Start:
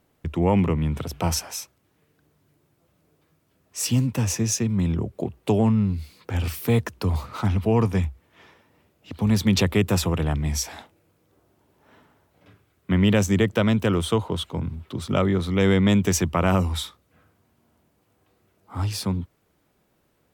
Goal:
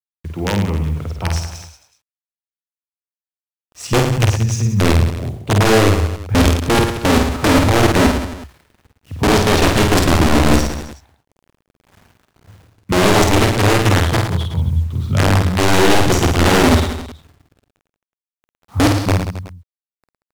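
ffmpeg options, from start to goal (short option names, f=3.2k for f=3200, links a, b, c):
-af "asubboost=boost=9.5:cutoff=100,aeval=exprs='(mod(2.51*val(0)+1,2)-1)/2.51':c=same,adynamicsmooth=sensitivity=4:basefreq=2.8k,acrusher=bits=7:mix=0:aa=0.000001,aecho=1:1:50|110|182|268.4|372.1:0.631|0.398|0.251|0.158|0.1,volume=-1dB"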